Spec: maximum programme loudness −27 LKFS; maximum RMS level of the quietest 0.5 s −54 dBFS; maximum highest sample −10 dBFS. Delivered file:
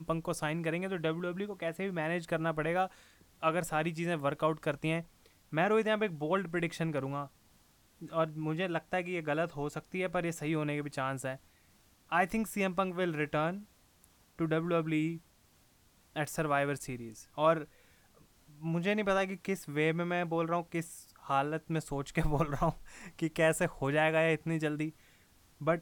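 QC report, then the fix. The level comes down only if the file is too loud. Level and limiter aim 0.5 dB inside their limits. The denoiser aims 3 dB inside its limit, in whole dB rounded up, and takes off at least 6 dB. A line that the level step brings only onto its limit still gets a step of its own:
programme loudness −33.5 LKFS: in spec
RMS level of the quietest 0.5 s −66 dBFS: in spec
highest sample −15.5 dBFS: in spec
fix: no processing needed

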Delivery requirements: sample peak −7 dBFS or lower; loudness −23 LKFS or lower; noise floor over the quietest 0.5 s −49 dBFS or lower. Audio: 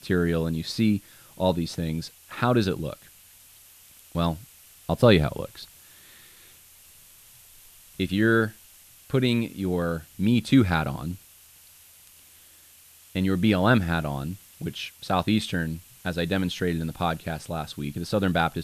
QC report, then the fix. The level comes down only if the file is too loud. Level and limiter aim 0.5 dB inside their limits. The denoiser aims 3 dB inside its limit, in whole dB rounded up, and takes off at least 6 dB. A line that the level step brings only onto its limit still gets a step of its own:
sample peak −5.0 dBFS: out of spec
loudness −25.5 LKFS: in spec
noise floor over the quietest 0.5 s −53 dBFS: in spec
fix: brickwall limiter −7.5 dBFS

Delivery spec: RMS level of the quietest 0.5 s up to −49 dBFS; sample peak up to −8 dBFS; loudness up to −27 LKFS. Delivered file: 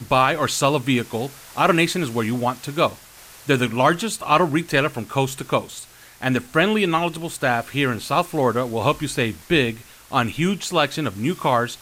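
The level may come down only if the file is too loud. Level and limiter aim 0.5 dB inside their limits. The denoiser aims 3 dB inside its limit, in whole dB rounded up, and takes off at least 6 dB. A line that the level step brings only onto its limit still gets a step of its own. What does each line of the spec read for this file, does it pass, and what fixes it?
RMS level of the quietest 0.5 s −45 dBFS: out of spec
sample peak −5.0 dBFS: out of spec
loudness −21.0 LKFS: out of spec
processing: level −6.5 dB

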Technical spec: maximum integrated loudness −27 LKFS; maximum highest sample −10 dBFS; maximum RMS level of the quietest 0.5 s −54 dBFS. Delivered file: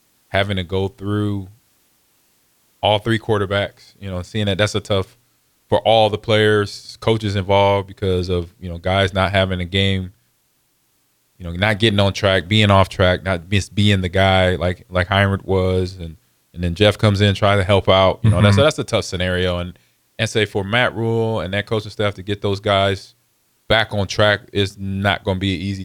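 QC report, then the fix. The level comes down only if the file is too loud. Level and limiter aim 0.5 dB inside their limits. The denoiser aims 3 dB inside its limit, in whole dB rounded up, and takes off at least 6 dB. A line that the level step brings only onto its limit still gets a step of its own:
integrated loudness −18.0 LKFS: out of spec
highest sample −1.5 dBFS: out of spec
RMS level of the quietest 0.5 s −63 dBFS: in spec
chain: level −9.5 dB

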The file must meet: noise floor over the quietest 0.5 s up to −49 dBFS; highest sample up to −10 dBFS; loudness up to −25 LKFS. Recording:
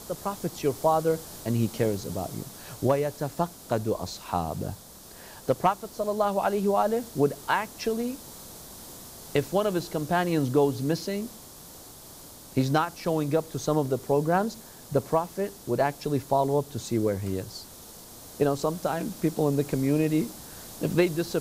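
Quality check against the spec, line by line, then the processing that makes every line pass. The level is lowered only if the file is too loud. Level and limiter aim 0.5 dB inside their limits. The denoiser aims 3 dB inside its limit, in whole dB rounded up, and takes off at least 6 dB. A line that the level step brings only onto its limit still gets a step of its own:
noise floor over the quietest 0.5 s −47 dBFS: out of spec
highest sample −11.0 dBFS: in spec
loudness −27.5 LKFS: in spec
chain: broadband denoise 6 dB, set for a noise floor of −47 dBFS

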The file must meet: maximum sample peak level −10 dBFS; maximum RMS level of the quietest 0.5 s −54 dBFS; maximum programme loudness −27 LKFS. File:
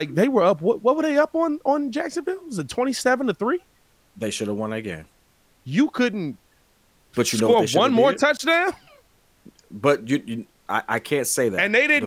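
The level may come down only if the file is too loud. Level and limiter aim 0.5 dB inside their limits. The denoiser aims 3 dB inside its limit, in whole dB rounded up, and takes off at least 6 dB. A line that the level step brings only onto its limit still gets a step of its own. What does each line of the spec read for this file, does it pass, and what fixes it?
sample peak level −7.0 dBFS: out of spec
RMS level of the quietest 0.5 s −60 dBFS: in spec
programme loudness −21.5 LKFS: out of spec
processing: level −6 dB

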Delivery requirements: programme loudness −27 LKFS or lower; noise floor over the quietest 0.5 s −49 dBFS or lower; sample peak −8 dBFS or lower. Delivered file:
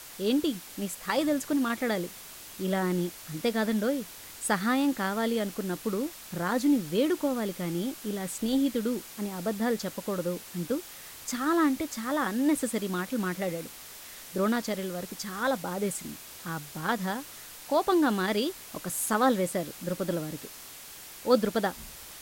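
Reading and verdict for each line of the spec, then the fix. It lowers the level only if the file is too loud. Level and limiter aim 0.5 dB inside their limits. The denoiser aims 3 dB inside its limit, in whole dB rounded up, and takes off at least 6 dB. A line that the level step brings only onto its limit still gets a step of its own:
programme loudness −29.5 LKFS: in spec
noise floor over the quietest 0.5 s −46 dBFS: out of spec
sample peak −9.5 dBFS: in spec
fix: broadband denoise 6 dB, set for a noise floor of −46 dBFS

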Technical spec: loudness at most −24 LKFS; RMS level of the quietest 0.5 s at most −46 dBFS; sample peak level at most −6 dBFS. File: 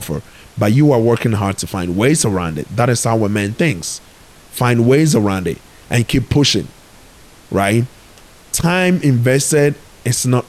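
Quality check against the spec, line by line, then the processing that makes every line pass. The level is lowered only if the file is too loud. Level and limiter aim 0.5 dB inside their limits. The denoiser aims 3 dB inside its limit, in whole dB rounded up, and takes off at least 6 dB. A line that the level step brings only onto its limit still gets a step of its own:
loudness −15.5 LKFS: out of spec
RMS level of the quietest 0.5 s −43 dBFS: out of spec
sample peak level −3.0 dBFS: out of spec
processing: level −9 dB

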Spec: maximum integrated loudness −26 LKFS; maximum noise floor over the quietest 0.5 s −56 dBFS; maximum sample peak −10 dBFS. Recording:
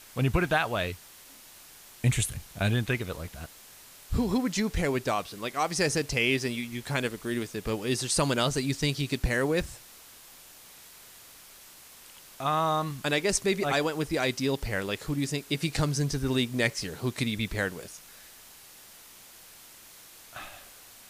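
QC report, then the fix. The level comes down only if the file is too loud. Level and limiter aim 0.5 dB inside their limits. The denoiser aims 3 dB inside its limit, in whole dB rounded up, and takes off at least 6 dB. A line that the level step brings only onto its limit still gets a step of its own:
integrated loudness −28.5 LKFS: in spec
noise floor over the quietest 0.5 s −51 dBFS: out of spec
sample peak −12.0 dBFS: in spec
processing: broadband denoise 8 dB, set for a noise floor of −51 dBFS

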